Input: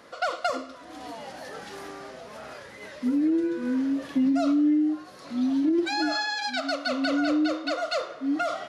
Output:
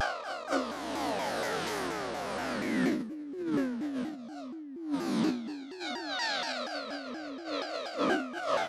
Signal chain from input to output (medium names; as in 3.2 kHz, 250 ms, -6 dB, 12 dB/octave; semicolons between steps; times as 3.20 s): reverse spectral sustain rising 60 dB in 1.69 s; compressor with a negative ratio -29 dBFS, ratio -0.5; vibrato with a chosen wave saw down 4.2 Hz, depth 250 cents; trim -3 dB